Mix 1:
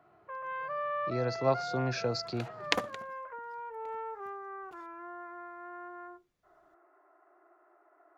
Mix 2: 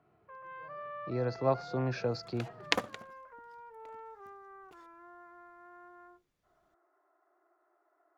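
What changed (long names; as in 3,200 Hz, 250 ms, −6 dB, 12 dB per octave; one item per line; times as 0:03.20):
speech: add low-pass filter 2,000 Hz 6 dB per octave
first sound −9.0 dB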